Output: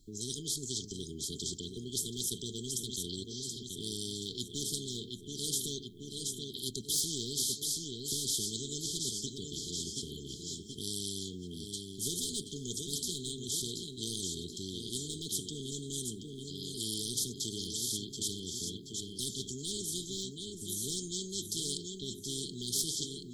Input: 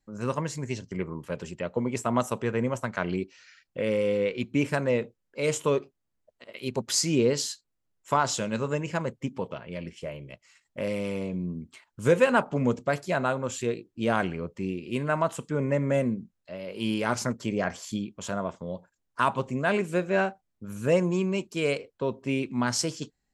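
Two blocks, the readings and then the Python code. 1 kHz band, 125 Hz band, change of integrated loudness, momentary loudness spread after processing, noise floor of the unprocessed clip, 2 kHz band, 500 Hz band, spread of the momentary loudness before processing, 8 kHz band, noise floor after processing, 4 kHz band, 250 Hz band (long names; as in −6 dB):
below −40 dB, −11.0 dB, −7.5 dB, 8 LU, −79 dBFS, below −40 dB, −18.0 dB, 14 LU, +3.0 dB, −47 dBFS, +3.5 dB, −12.5 dB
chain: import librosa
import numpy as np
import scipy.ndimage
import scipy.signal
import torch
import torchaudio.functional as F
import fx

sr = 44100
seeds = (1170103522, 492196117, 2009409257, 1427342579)

p1 = fx.peak_eq(x, sr, hz=3100.0, db=3.0, octaves=0.28)
p2 = fx.echo_feedback(p1, sr, ms=728, feedback_pct=42, wet_db=-12)
p3 = np.clip(p2, -10.0 ** (-18.5 / 20.0), 10.0 ** (-18.5 / 20.0))
p4 = p2 + (p3 * 10.0 ** (-10.5 / 20.0))
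p5 = fx.brickwall_bandstop(p4, sr, low_hz=430.0, high_hz=3100.0)
p6 = fx.spectral_comp(p5, sr, ratio=4.0)
y = p6 * 10.0 ** (-7.5 / 20.0)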